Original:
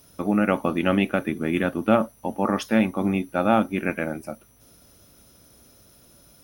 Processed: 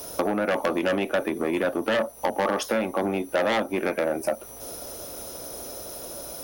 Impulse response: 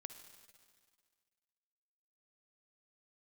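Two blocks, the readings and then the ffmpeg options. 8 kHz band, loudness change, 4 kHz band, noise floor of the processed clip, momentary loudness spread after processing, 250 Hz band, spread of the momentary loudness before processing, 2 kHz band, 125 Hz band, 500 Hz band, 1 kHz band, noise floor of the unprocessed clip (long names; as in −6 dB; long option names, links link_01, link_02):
+9.5 dB, −3.5 dB, +3.5 dB, −42 dBFS, 11 LU, −6.0 dB, 9 LU, 0.0 dB, −9.5 dB, +1.5 dB, −1.5 dB, −55 dBFS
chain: -filter_complex "[0:a]lowshelf=frequency=65:gain=10.5,acrossover=split=430|800|2500[link_01][link_02][link_03][link_04];[link_02]aeval=exprs='0.178*sin(PI/2*3.55*val(0)/0.178)':channel_layout=same[link_05];[link_01][link_05][link_03][link_04]amix=inputs=4:normalize=0,acompressor=threshold=-29dB:ratio=12,aeval=exprs='0.141*(cos(1*acos(clip(val(0)/0.141,-1,1)))-cos(1*PI/2))+0.0224*(cos(5*acos(clip(val(0)/0.141,-1,1)))-cos(5*PI/2))':channel_layout=same,bass=frequency=250:gain=-9,treble=frequency=4000:gain=6,volume=6dB"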